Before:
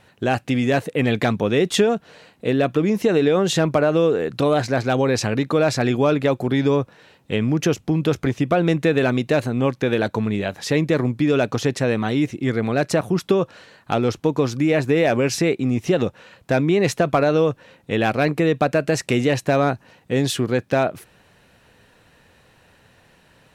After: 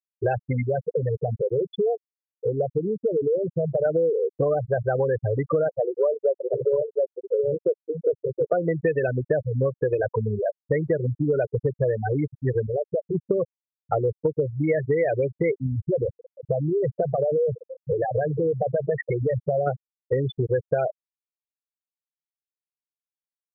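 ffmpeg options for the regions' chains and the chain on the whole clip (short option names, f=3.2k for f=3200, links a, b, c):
-filter_complex "[0:a]asettb=1/sr,asplit=3[a][b][c];[a]atrim=end=0.624[d];[b]atrim=start=0.62:end=3.85,asetpts=PTS-STARTPTS,afade=t=in:d=0.004:c=qsin,afade=t=out:st=3.226:d=0.004:c=qsin,lowshelf=f=410:g=2.5,acompressor=threshold=-23dB:ratio=2:attack=3.2:release=140:knee=1:detection=peak[e];[c]atrim=start=3.846[f];[d][e]acrossfade=d=0.004:c1=hsin:c2=qsin[g];[g][f]acrossfade=d=0.004:c1=qsin:c2=hsin,asettb=1/sr,asplit=3[h][i][j];[h]atrim=end=5.684[k];[i]atrim=start=5.68:end=8.53,asetpts=PTS-STARTPTS,afade=t=in:d=0.004:c=qsin,afade=t=out:st=2.846:d=0.004:c=qsin,bandpass=f=520:t=q:w=0.96,aecho=1:1:1.8:0.44,atrim=end_sample=125685,aecho=1:1:723:0.531,atrim=end_sample=125685[l];[j]atrim=start=8.526[m];[k][l]acrossfade=d=0.004:c1=hsin:c2=qsin[n];[n][m]acrossfade=d=0.004:c1=qsin:c2=hsin,asettb=1/sr,asplit=3[o][p][q];[o]atrim=end=12.674[r];[p]atrim=start=12.67:end=13.15,asetpts=PTS-STARTPTS,afade=t=in:d=0.004:c=qsin,afade=t=out:st=0.476:d=0.004:c=qsin,adynamicequalizer=threshold=0.0316:dfrequency=390:dqfactor=0.99:tfrequency=390:tqfactor=0.99:attack=5:release=100:ratio=0.375:range=2.5:mode=boostabove:tftype=bell,acompressor=threshold=-20dB:ratio=10:attack=3.2:release=140:knee=1:detection=peak[s];[q]atrim=start=13.146[t];[r][s]acrossfade=d=0.004:c1=hsin:c2=qsin[u];[u][t]acrossfade=d=0.004:c1=qsin:c2=hsin,asettb=1/sr,asplit=3[v][w][x];[v]atrim=end=15.664[y];[w]atrim=start=15.66:end=19.67,asetpts=PTS-STARTPTS,afade=t=in:d=0.004:c=qsin,afade=t=out:st=4.006:d=0.004:c=qsin,aeval=exprs='val(0)+0.5*0.0501*sgn(val(0))':c=same,acompressor=threshold=-18dB:ratio=6:attack=3.2:release=140:knee=1:detection=peak,aecho=1:1:132|264|396|528:0.0891|0.0463|0.0241|0.0125,atrim=end_sample=176841[z];[x]atrim=start=19.666[aa];[y][z]acrossfade=d=0.004:c1=hsin:c2=qsin[ab];[ab][aa]acrossfade=d=0.004:c1=qsin:c2=hsin,equalizer=f=125:t=o:w=1:g=7,equalizer=f=250:t=o:w=1:g=-8,equalizer=f=500:t=o:w=1:g=10,equalizer=f=2k:t=o:w=1:g=8,afftfilt=real='re*gte(hypot(re,im),0.501)':imag='im*gte(hypot(re,im),0.501)':win_size=1024:overlap=0.75,acompressor=threshold=-17dB:ratio=6,volume=-2.5dB"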